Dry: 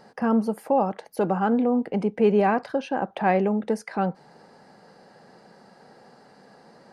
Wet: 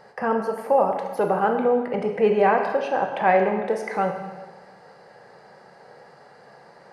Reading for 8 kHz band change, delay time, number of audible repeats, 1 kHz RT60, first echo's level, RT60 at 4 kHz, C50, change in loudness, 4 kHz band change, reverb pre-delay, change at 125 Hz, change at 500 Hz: n/a, none, none, 1.3 s, none, 1.2 s, 6.0 dB, +2.0 dB, +1.5 dB, 17 ms, -4.0 dB, +3.5 dB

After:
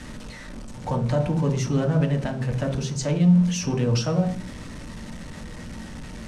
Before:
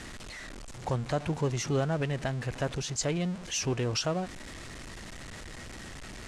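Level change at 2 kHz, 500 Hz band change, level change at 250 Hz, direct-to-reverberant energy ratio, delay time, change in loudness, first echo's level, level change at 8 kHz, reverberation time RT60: +1.0 dB, +5.0 dB, +12.0 dB, 1.0 dB, none, +8.5 dB, none, +0.5 dB, 0.40 s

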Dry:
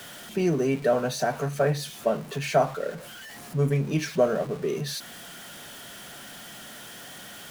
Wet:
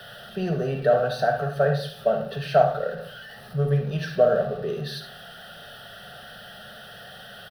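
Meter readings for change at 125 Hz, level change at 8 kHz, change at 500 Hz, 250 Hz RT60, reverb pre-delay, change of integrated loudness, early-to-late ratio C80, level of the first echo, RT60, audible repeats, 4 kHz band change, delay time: +1.5 dB, under -10 dB, +3.0 dB, 0.65 s, 40 ms, +2.5 dB, 12.0 dB, -11.5 dB, 0.60 s, 1, -0.5 dB, 74 ms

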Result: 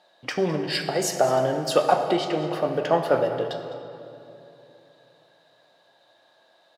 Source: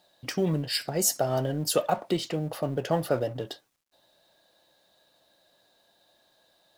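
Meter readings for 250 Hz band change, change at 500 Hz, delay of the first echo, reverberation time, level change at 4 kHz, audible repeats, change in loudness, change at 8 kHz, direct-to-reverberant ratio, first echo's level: +2.5 dB, +6.5 dB, 0.207 s, 2.9 s, +2.0 dB, 1, +4.0 dB, -3.5 dB, 5.0 dB, -16.0 dB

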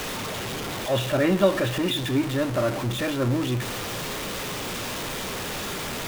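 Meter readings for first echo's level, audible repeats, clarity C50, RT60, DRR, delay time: none, none, 16.0 dB, 0.65 s, 11.5 dB, none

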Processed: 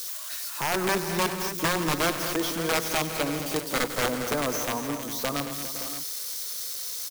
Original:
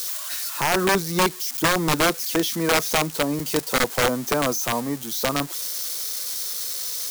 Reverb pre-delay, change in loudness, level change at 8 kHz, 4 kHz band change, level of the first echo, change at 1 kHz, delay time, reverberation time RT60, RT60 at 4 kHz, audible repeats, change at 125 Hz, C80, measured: none, -5.0 dB, -5.0 dB, -5.0 dB, -15.0 dB, -5.0 dB, 96 ms, none, none, 6, -5.0 dB, none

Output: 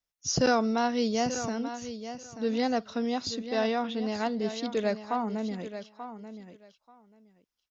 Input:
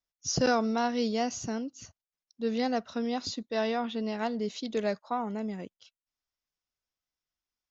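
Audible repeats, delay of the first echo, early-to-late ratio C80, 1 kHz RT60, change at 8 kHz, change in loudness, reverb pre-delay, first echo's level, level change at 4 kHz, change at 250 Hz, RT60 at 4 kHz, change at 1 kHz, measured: 2, 0.885 s, none, none, n/a, +1.5 dB, none, -11.0 dB, +2.0 dB, +2.0 dB, none, +2.0 dB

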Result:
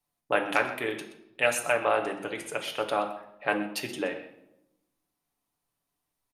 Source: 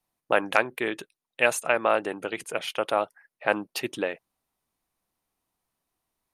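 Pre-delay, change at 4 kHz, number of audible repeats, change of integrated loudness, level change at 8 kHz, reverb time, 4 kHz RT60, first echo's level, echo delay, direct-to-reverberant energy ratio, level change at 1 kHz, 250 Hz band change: 7 ms, -1.5 dB, 1, -2.0 dB, -1.0 dB, 0.85 s, 0.60 s, -15.5 dB, 0.125 s, 2.5 dB, -2.0 dB, -1.0 dB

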